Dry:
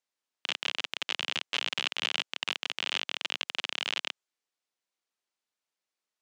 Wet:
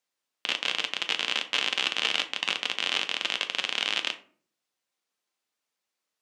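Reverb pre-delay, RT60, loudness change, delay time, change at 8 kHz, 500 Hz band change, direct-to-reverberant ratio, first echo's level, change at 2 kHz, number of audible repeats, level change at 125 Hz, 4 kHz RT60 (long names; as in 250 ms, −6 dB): 4 ms, 0.50 s, +4.5 dB, no echo audible, +4.5 dB, +5.0 dB, 6.5 dB, no echo audible, +5.0 dB, no echo audible, can't be measured, 0.25 s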